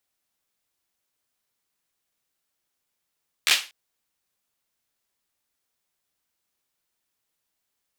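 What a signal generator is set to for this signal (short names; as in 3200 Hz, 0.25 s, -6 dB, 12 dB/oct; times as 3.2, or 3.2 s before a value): hand clap length 0.24 s, bursts 4, apart 13 ms, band 2900 Hz, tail 0.30 s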